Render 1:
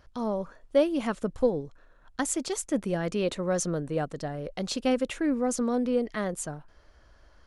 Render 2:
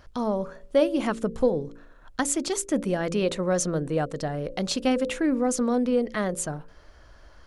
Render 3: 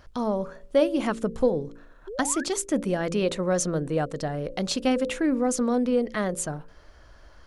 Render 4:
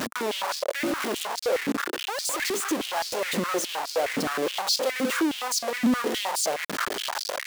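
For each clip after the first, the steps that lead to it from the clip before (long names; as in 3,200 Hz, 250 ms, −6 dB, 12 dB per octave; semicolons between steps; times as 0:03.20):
hum removal 56.7 Hz, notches 10; in parallel at −2.5 dB: downward compressor, threshold −35 dBFS, peak gain reduction 16 dB; on the sum: level +1.5 dB
sound drawn into the spectrogram rise, 0:02.07–0:02.44, 360–1,800 Hz −36 dBFS
sign of each sample alone; high-pass on a step sequencer 9.6 Hz 230–4,700 Hz; level −2.5 dB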